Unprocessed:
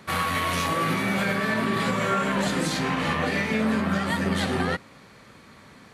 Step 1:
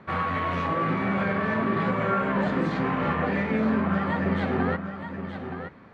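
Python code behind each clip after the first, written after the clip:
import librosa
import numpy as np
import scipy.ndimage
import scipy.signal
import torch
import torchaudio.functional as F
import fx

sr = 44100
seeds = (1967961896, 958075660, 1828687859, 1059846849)

y = scipy.signal.sosfilt(scipy.signal.butter(2, 1700.0, 'lowpass', fs=sr, output='sos'), x)
y = y + 10.0 ** (-9.0 / 20.0) * np.pad(y, (int(922 * sr / 1000.0), 0))[:len(y)]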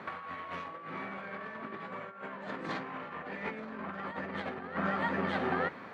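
y = fx.highpass(x, sr, hz=510.0, slope=6)
y = fx.over_compress(y, sr, threshold_db=-36.0, ratio=-0.5)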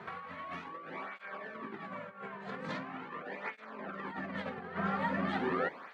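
y = fx.flanger_cancel(x, sr, hz=0.42, depth_ms=3.7)
y = y * 10.0 ** (1.0 / 20.0)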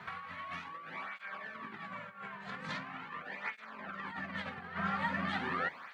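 y = fx.peak_eq(x, sr, hz=390.0, db=-14.5, octaves=2.0)
y = y * 10.0 ** (4.0 / 20.0)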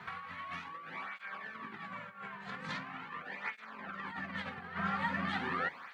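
y = fx.notch(x, sr, hz=620.0, q=12.0)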